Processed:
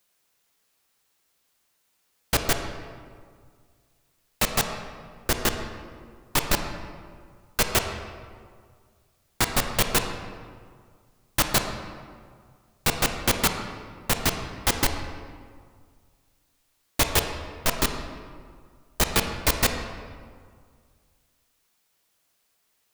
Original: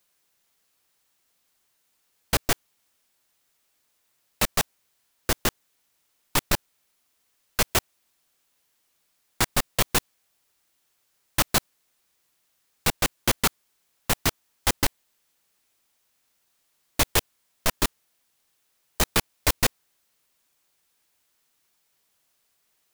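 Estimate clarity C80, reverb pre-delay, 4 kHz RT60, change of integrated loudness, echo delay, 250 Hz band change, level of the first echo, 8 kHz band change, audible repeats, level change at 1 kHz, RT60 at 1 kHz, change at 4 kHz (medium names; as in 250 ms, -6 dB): 7.5 dB, 23 ms, 1.1 s, 0.0 dB, no echo, +1.5 dB, no echo, 0.0 dB, no echo, +1.5 dB, 1.9 s, +0.5 dB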